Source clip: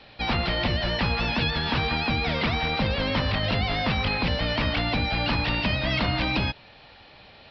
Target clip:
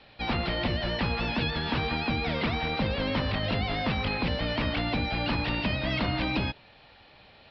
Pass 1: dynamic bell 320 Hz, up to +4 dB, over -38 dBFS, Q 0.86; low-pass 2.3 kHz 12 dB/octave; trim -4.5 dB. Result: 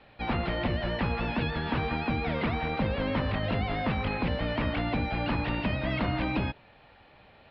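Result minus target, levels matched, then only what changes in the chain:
4 kHz band -6.0 dB
change: low-pass 5.4 kHz 12 dB/octave

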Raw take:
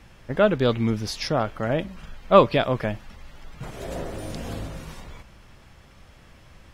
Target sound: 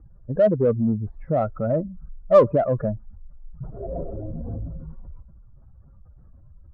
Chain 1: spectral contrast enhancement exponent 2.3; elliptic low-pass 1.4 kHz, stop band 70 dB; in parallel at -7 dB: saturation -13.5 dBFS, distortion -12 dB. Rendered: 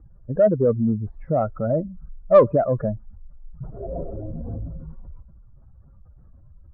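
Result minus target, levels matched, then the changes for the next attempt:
saturation: distortion -6 dB
change: saturation -21 dBFS, distortion -6 dB

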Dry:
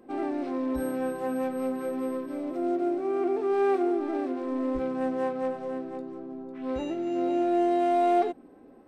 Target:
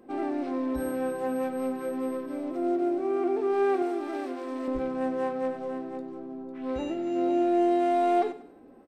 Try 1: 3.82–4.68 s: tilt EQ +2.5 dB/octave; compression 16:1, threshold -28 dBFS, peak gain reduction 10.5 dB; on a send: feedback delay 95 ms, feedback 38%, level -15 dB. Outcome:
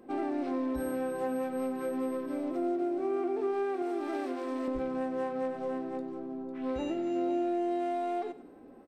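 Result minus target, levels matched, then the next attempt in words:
compression: peak gain reduction +10.5 dB
3.82–4.68 s: tilt EQ +2.5 dB/octave; on a send: feedback delay 95 ms, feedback 38%, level -15 dB

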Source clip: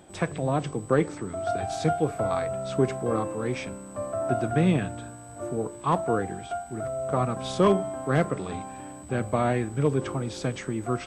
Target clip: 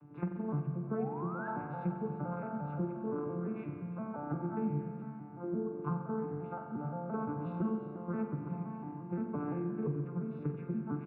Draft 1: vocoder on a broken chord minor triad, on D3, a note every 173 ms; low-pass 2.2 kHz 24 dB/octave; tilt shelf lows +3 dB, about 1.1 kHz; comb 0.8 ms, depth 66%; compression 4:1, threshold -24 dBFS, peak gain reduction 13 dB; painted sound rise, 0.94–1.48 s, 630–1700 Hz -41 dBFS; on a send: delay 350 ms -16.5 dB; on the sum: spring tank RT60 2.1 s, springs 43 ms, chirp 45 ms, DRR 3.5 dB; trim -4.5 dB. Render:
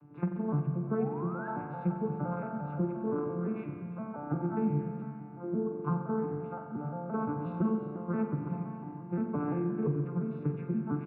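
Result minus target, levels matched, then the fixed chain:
compression: peak gain reduction -4.5 dB
vocoder on a broken chord minor triad, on D3, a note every 173 ms; low-pass 2.2 kHz 24 dB/octave; tilt shelf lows +3 dB, about 1.1 kHz; comb 0.8 ms, depth 66%; compression 4:1, threshold -30 dBFS, peak gain reduction 17.5 dB; painted sound rise, 0.94–1.48 s, 630–1700 Hz -41 dBFS; on a send: delay 350 ms -16.5 dB; on the sum: spring tank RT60 2.1 s, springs 43 ms, chirp 45 ms, DRR 3.5 dB; trim -4.5 dB

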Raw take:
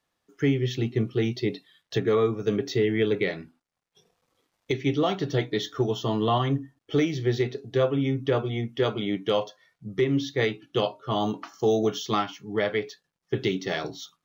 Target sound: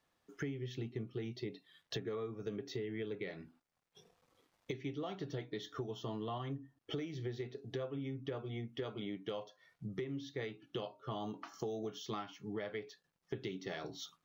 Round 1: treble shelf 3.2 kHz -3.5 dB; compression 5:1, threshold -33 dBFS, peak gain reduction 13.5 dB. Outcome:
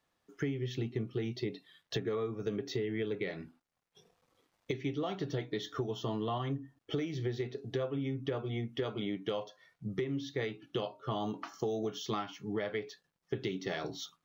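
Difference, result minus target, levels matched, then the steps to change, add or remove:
compression: peak gain reduction -6 dB
change: compression 5:1, threshold -40.5 dBFS, peak gain reduction 19.5 dB

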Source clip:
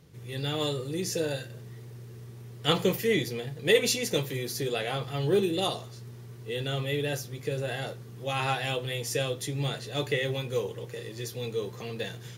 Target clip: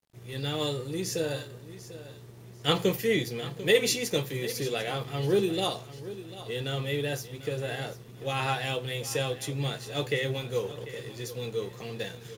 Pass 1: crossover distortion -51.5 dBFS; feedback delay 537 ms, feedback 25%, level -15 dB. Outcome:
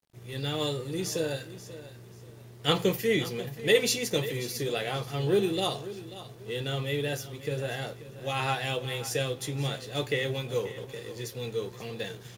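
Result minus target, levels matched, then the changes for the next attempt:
echo 207 ms early
change: feedback delay 744 ms, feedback 25%, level -15 dB

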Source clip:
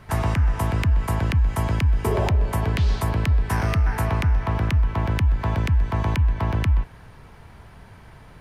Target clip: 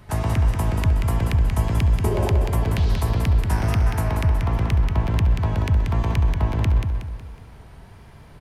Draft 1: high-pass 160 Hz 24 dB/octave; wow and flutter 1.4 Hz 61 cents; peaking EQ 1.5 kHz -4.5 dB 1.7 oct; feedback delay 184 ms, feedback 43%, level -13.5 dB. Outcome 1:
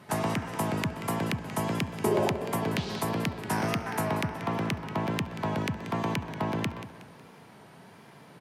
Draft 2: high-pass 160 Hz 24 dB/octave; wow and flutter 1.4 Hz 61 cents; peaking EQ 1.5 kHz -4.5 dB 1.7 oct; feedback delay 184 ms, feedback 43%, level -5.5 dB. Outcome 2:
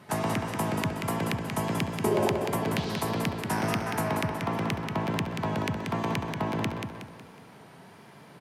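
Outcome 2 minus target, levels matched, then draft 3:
125 Hz band -5.0 dB
wow and flutter 1.4 Hz 61 cents; peaking EQ 1.5 kHz -4.5 dB 1.7 oct; feedback delay 184 ms, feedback 43%, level -5.5 dB

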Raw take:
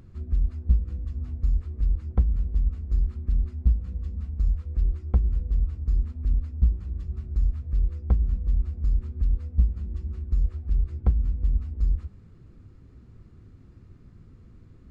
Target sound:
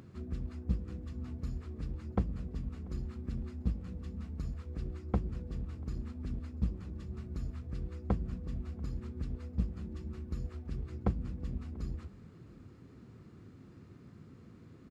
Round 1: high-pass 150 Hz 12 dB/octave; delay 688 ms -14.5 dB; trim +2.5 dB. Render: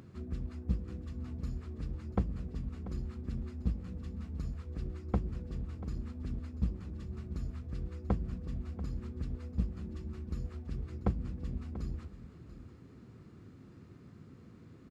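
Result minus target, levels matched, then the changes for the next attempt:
echo-to-direct +10 dB
change: delay 688 ms -24.5 dB

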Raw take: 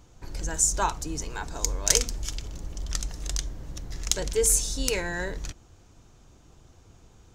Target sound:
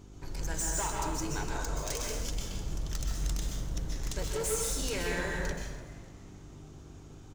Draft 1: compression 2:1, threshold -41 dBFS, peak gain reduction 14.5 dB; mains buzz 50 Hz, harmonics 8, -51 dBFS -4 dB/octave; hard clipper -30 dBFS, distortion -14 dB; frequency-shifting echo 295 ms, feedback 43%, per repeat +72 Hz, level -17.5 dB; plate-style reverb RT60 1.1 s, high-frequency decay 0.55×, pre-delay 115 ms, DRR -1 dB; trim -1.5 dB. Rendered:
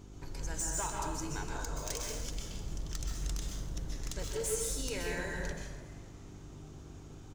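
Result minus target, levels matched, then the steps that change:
compression: peak gain reduction +5.5 dB
change: compression 2:1, threshold -30 dBFS, peak gain reduction 9 dB

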